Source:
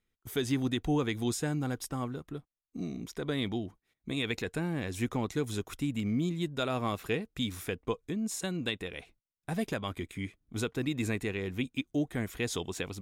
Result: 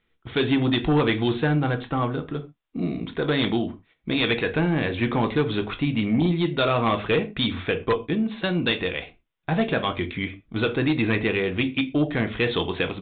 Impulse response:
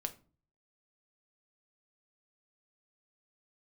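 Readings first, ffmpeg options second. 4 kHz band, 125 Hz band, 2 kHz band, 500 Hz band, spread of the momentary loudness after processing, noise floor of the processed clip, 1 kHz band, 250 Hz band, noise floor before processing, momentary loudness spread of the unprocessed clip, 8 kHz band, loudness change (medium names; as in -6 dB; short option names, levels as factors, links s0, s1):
+10.5 dB, +9.0 dB, +12.0 dB, +11.0 dB, 8 LU, -71 dBFS, +12.0 dB, +9.0 dB, under -85 dBFS, 9 LU, under -40 dB, +10.0 dB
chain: -filter_complex "[0:a]lowshelf=f=360:g=-6[s0];[1:a]atrim=start_sample=2205,atrim=end_sample=6174[s1];[s0][s1]afir=irnorm=-1:irlink=0,aresample=8000,aeval=exprs='0.112*sin(PI/2*2.24*val(0)/0.112)':c=same,aresample=44100,volume=1.58"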